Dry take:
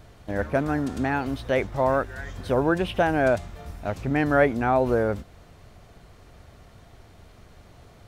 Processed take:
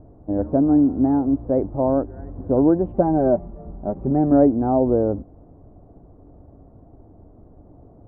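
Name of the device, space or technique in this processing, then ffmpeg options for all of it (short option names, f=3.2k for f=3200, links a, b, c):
under water: -filter_complex "[0:a]lowpass=f=800:w=0.5412,lowpass=f=800:w=1.3066,equalizer=f=290:t=o:w=0.42:g=11,asettb=1/sr,asplit=3[a][b][c];[a]atrim=end=2.944[d];[b]atrim=start=2.94:end=4.32,asetpts=PTS-STARTPTS,afade=t=in:d=0.004:c=qsin,afade=t=out:st=1.376:d=0.004:c=qsin,aecho=1:1:5.2:0.65,atrim=end_sample=60858[e];[c]atrim=start=4.316[f];[d][e]acrossfade=d=0.004:c1=hsin:c2=qsin[g];[g][f]acrossfade=d=0.004:c1=qsin:c2=hsin,volume=2dB"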